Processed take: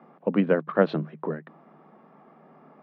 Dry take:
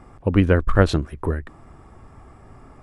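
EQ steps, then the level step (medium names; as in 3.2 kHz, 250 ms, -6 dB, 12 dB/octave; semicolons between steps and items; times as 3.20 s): rippled Chebyshev high-pass 150 Hz, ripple 6 dB; low-pass 4.2 kHz 24 dB/octave; distance through air 160 m; 0.0 dB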